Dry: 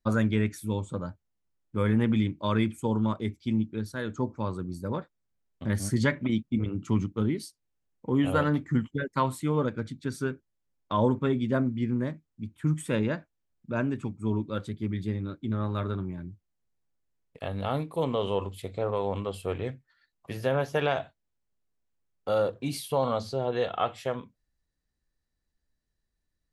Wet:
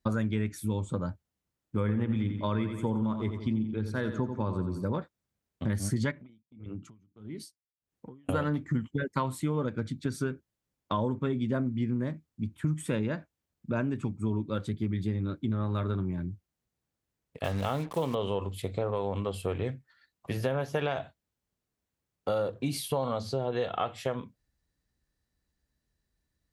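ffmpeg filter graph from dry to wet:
ffmpeg -i in.wav -filter_complex "[0:a]asettb=1/sr,asplit=3[link_01][link_02][link_03];[link_01]atrim=end=1.804[link_04];[link_02]atrim=start=1.8:end=4.85,asetpts=PTS-STARTPTS,afade=type=in:duration=0.004:curve=qsin,afade=type=out:start_time=3.046:duration=0.004:curve=qsin,highshelf=frequency=5000:gain=-11,aecho=1:1:87|174|261|348|435:0.355|0.163|0.0751|0.0345|0.0159,atrim=end_sample=134505[link_05];[link_03]atrim=start=4.846[link_06];[link_04][link_05]acrossfade=duration=0.004:curve1=hsin:curve2=qsin[link_07];[link_07][link_06]acrossfade=duration=0.004:curve1=qsin:curve2=hsin,asettb=1/sr,asplit=3[link_08][link_09][link_10];[link_08]atrim=end=6.114[link_11];[link_09]atrim=start=6.11:end=8.29,asetpts=PTS-STARTPTS,afade=type=in:duration=0.004:curve=qsin,afade=type=out:start_time=2.176:duration=0.004:curve=qsin,acompressor=threshold=-40dB:ratio=5:attack=3.2:release=140:knee=1:detection=peak,aeval=exprs='val(0)*pow(10,-27*(0.5-0.5*cos(2*PI*1.6*n/s))/20)':channel_layout=same[link_12];[link_10]atrim=start=8.286[link_13];[link_11][link_12]acrossfade=duration=0.004:curve1=hsin:curve2=qsin[link_14];[link_14][link_13]acrossfade=duration=0.004:curve1=qsin:curve2=hsin,asettb=1/sr,asplit=3[link_15][link_16][link_17];[link_15]atrim=end=17.444[link_18];[link_16]atrim=start=17.44:end=18.15,asetpts=PTS-STARTPTS,afade=type=in:duration=0.004:curve=qsin,afade=type=out:start_time=0.706:duration=0.004:curve=qsin,equalizer=frequency=1900:width=0.4:gain=4,acrusher=bits=6:mix=0:aa=0.5[link_19];[link_17]atrim=start=18.146[link_20];[link_18][link_19]acrossfade=duration=0.004:curve1=hsin:curve2=qsin[link_21];[link_21][link_20]acrossfade=duration=0.004:curve1=qsin:curve2=hsin,highpass=48,lowshelf=frequency=230:gain=3.5,acompressor=threshold=-30dB:ratio=4,volume=3dB" out.wav

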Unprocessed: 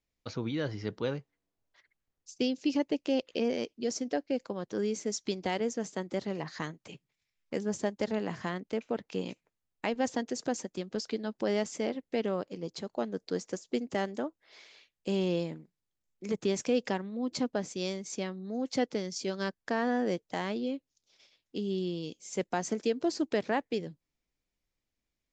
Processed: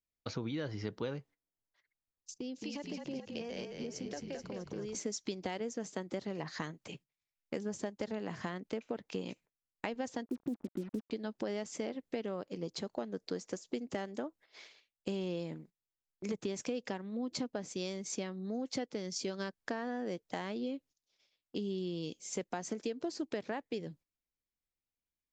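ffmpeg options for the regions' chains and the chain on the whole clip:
ffmpeg -i in.wav -filter_complex "[0:a]asettb=1/sr,asplit=3[link_01][link_02][link_03];[link_01]atrim=end=2.344[link_04];[link_02]atrim=start=2.34:end=4.95,asetpts=PTS-STARTPTS,afade=type=in:duration=0.004:curve=qsin,afade=type=out:start_time=2.606:duration=0.004:curve=qsin,acrossover=split=510[link_05][link_06];[link_05]aeval=exprs='val(0)*(1-0.7/2+0.7/2*cos(2*PI*1.3*n/s))':channel_layout=same[link_07];[link_06]aeval=exprs='val(0)*(1-0.7/2-0.7/2*cos(2*PI*1.3*n/s))':channel_layout=same[link_08];[link_07][link_08]amix=inputs=2:normalize=0,acompressor=threshold=-39dB:ratio=6:attack=3.2:release=140:knee=1:detection=peak,asplit=8[link_09][link_10][link_11][link_12][link_13][link_14][link_15][link_16];[link_10]adelay=216,afreqshift=-37,volume=-4dB[link_17];[link_11]adelay=432,afreqshift=-74,volume=-9.4dB[link_18];[link_12]adelay=648,afreqshift=-111,volume=-14.7dB[link_19];[link_13]adelay=864,afreqshift=-148,volume=-20.1dB[link_20];[link_14]adelay=1080,afreqshift=-185,volume=-25.4dB[link_21];[link_15]adelay=1296,afreqshift=-222,volume=-30.8dB[link_22];[link_16]adelay=1512,afreqshift=-259,volume=-36.1dB[link_23];[link_09][link_17][link_18][link_19][link_20][link_21][link_22][link_23]amix=inputs=8:normalize=0,atrim=end_sample=115101[link_24];[link_03]atrim=start=4.946[link_25];[link_04][link_24]acrossfade=duration=0.004:curve1=hsin:curve2=qsin[link_26];[link_26][link_25]acrossfade=duration=0.004:curve1=qsin:curve2=hsin,asettb=1/sr,asplit=3[link_27][link_28][link_29];[link_27]atrim=end=10.264[link_30];[link_28]atrim=start=10.26:end=11.11,asetpts=PTS-STARTPTS,afade=type=in:duration=0.004:curve=qsin,afade=type=out:start_time=0.846:duration=0.004:curve=qsin,lowpass=frequency=290:width_type=q:width=2.3,acrusher=bits=7:mix=0:aa=0.5[link_31];[link_29]atrim=start=11.106[link_32];[link_30][link_31]acrossfade=duration=0.004:curve1=hsin:curve2=qsin[link_33];[link_33][link_32]acrossfade=duration=0.004:curve1=qsin:curve2=hsin,agate=range=-13dB:threshold=-55dB:ratio=16:detection=peak,acompressor=threshold=-35dB:ratio=6,volume=1dB" out.wav

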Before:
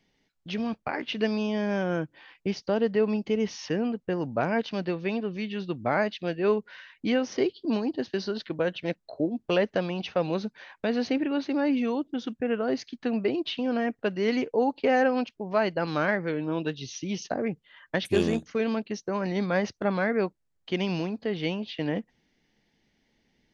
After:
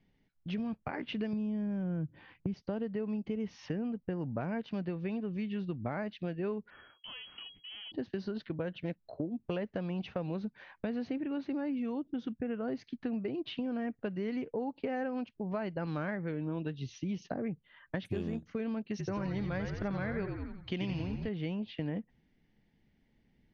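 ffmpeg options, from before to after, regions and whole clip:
ffmpeg -i in.wav -filter_complex "[0:a]asettb=1/sr,asplit=3[link_01][link_02][link_03];[link_01]atrim=end=1.334[link_04];[link_02]atrim=start=1.33:end=2.54,asetpts=PTS-STARTPTS,afade=type=in:duration=0.004:curve=qsin,afade=type=out:start_time=1.206:duration=0.004:curve=qsin,equalizer=frequency=110:width=0.38:gain=13.5,bandreject=frequency=5100:width=25,acompressor=threshold=-26dB:ratio=2.5:attack=3.2:release=140:knee=1:detection=peak[link_05];[link_03]atrim=start=2.536[link_06];[link_04][link_05]acrossfade=duration=0.004:curve1=hsin:curve2=qsin[link_07];[link_07][link_06]acrossfade=duration=0.004:curve1=qsin:curve2=hsin,asettb=1/sr,asplit=3[link_08][link_09][link_10];[link_08]atrim=end=6.704[link_11];[link_09]atrim=start=6.7:end=7.92,asetpts=PTS-STARTPTS,afade=type=in:duration=0.004:curve=qsin,afade=type=out:start_time=1.216:duration=0.004:curve=qsin,aeval=exprs='if(lt(val(0),0),0.251*val(0),val(0))':channel_layout=same,acompressor=threshold=-33dB:ratio=16:attack=3.2:release=140:knee=1:detection=peak,lowpass=frequency=2800:width_type=q:width=0.5098,lowpass=frequency=2800:width_type=q:width=0.6013,lowpass=frequency=2800:width_type=q:width=0.9,lowpass=frequency=2800:width_type=q:width=2.563,afreqshift=-3300[link_12];[link_10]atrim=start=7.916[link_13];[link_11][link_12]acrossfade=duration=0.004:curve1=hsin:curve2=qsin[link_14];[link_14][link_13]acrossfade=duration=0.004:curve1=qsin:curve2=hsin,asettb=1/sr,asplit=3[link_15][link_16][link_17];[link_15]atrim=end=18.884[link_18];[link_16]atrim=start=18.88:end=21.29,asetpts=PTS-STARTPTS,afade=type=in:duration=0.004:curve=qsin,afade=type=out:start_time=2.406:duration=0.004:curve=qsin,highshelf=frequency=2100:gain=9.5,asplit=7[link_19][link_20][link_21][link_22][link_23][link_24][link_25];[link_20]adelay=88,afreqshift=-53,volume=-6dB[link_26];[link_21]adelay=176,afreqshift=-106,volume=-12.6dB[link_27];[link_22]adelay=264,afreqshift=-159,volume=-19.1dB[link_28];[link_23]adelay=352,afreqshift=-212,volume=-25.7dB[link_29];[link_24]adelay=440,afreqshift=-265,volume=-32.2dB[link_30];[link_25]adelay=528,afreqshift=-318,volume=-38.8dB[link_31];[link_19][link_26][link_27][link_28][link_29][link_30][link_31]amix=inputs=7:normalize=0,atrim=end_sample=106281[link_32];[link_17]atrim=start=21.286[link_33];[link_18][link_32]acrossfade=duration=0.004:curve1=hsin:curve2=qsin[link_34];[link_34][link_33]acrossfade=duration=0.004:curve1=qsin:curve2=hsin,bass=frequency=250:gain=10,treble=frequency=4000:gain=-12,acompressor=threshold=-27dB:ratio=6,volume=-5.5dB" out.wav

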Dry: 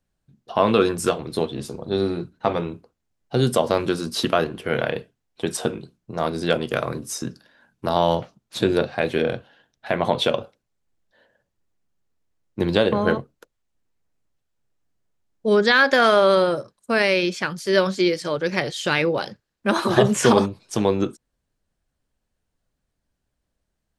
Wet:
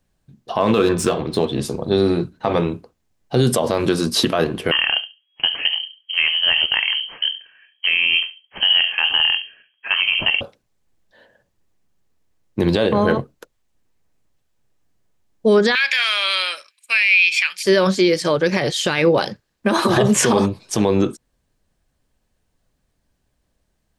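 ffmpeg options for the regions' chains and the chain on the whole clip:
ffmpeg -i in.wav -filter_complex "[0:a]asettb=1/sr,asplit=3[link_01][link_02][link_03];[link_01]atrim=end=0.604[link_04];[link_02]atrim=start=0.6:end=1.47,asetpts=PTS-STARTPTS,afade=type=in:duration=0.004:curve=qsin,afade=type=out:start_time=0.866:duration=0.004:curve=qsin,bandreject=frequency=125.9:width_type=h:width=4,bandreject=frequency=251.8:width_type=h:width=4,bandreject=frequency=377.7:width_type=h:width=4,bandreject=frequency=503.6:width_type=h:width=4,bandreject=frequency=629.5:width_type=h:width=4,bandreject=frequency=755.4:width_type=h:width=4,bandreject=frequency=881.3:width_type=h:width=4,bandreject=frequency=1007.2:width_type=h:width=4,bandreject=frequency=1133.1:width_type=h:width=4,bandreject=frequency=1259:width_type=h:width=4,bandreject=frequency=1384.9:width_type=h:width=4,bandreject=frequency=1510.8:width_type=h:width=4,bandreject=frequency=1636.7:width_type=h:width=4,bandreject=frequency=1762.6:width_type=h:width=4,bandreject=frequency=1888.5:width_type=h:width=4,bandreject=frequency=2014.4:width_type=h:width=4,bandreject=frequency=2140.3:width_type=h:width=4,bandreject=frequency=2266.2:width_type=h:width=4,bandreject=frequency=2392.1:width_type=h:width=4,bandreject=frequency=2518:width_type=h:width=4,bandreject=frequency=2643.9:width_type=h:width=4,bandreject=frequency=2769.8:width_type=h:width=4,bandreject=frequency=2895.7:width_type=h:width=4,bandreject=frequency=3021.6:width_type=h:width=4,bandreject=frequency=3147.5:width_type=h:width=4,bandreject=frequency=3273.4:width_type=h:width=4,bandreject=frequency=3399.3:width_type=h:width=4,bandreject=frequency=3525.2:width_type=h:width=4,bandreject=frequency=3651.1:width_type=h:width=4,bandreject=frequency=3777:width_type=h:width=4,bandreject=frequency=3902.9:width_type=h:width=4,bandreject=frequency=4028.8:width_type=h:width=4,bandreject=frequency=4154.7:width_type=h:width=4,bandreject=frequency=4280.6:width_type=h:width=4,bandreject=frequency=4406.5:width_type=h:width=4,bandreject=frequency=4532.4:width_type=h:width=4,adynamicsmooth=sensitivity=6:basefreq=4900[link_05];[link_03]atrim=start=1.466[link_06];[link_04][link_05]acrossfade=duration=0.004:curve1=hsin:curve2=qsin[link_07];[link_07][link_06]acrossfade=duration=0.004:curve1=qsin:curve2=hsin,asettb=1/sr,asplit=3[link_08][link_09][link_10];[link_08]atrim=end=4.714[link_11];[link_09]atrim=start=4.71:end=10.41,asetpts=PTS-STARTPTS,afade=type=in:duration=0.004:curve=qsin,afade=type=out:start_time=5.696:duration=0.004:curve=qsin,adynamicsmooth=sensitivity=6.5:basefreq=2200,asplit=2[link_12][link_13];[link_13]adelay=70,lowpass=frequency=810:poles=1,volume=-11dB,asplit=2[link_14][link_15];[link_15]adelay=70,lowpass=frequency=810:poles=1,volume=0.21,asplit=2[link_16][link_17];[link_17]adelay=70,lowpass=frequency=810:poles=1,volume=0.21[link_18];[link_12][link_14][link_16][link_18]amix=inputs=4:normalize=0,atrim=end_sample=251370,lowpass=frequency=2800:width_type=q:width=0.5098,lowpass=frequency=2800:width_type=q:width=0.6013,lowpass=frequency=2800:width_type=q:width=0.9,lowpass=frequency=2800:width_type=q:width=2.563,afreqshift=-3300[link_19];[link_10]atrim=start=10.406[link_20];[link_11][link_19]acrossfade=duration=0.004:curve1=hsin:curve2=qsin[link_21];[link_21][link_20]acrossfade=duration=0.004:curve1=qsin:curve2=hsin,asettb=1/sr,asplit=3[link_22][link_23][link_24];[link_22]atrim=end=15.754[link_25];[link_23]atrim=start=15.75:end=17.63,asetpts=PTS-STARTPTS,afade=type=in:duration=0.004:curve=qsin,afade=type=out:start_time=1.876:duration=0.004:curve=qsin,highpass=frequency=2400:width_type=q:width=9.1,bandreject=frequency=6200:width=11[link_26];[link_24]atrim=start=17.626[link_27];[link_25][link_26]acrossfade=duration=0.004:curve1=hsin:curve2=qsin[link_28];[link_28][link_27]acrossfade=duration=0.004:curve1=qsin:curve2=hsin,bandreject=frequency=1400:width=17,alimiter=limit=-14.5dB:level=0:latency=1:release=67,volume=8dB" out.wav

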